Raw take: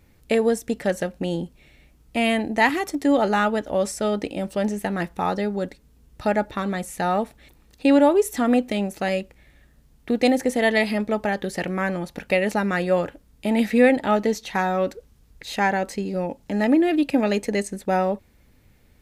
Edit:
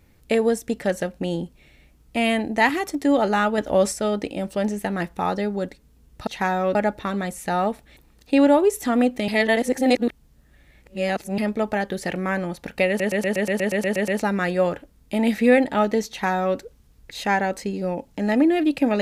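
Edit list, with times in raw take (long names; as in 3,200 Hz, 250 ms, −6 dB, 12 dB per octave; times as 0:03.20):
0:03.58–0:03.93: clip gain +4 dB
0:08.80–0:10.90: reverse
0:12.40: stutter 0.12 s, 11 plays
0:14.41–0:14.89: duplicate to 0:06.27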